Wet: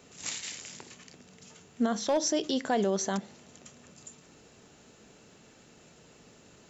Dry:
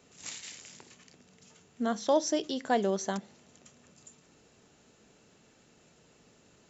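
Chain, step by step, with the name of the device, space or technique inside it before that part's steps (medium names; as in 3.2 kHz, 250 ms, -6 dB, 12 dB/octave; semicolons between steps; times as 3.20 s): clipper into limiter (hard clipper -17.5 dBFS, distortion -24 dB; peak limiter -24.5 dBFS, peak gain reduction 7 dB); trim +5.5 dB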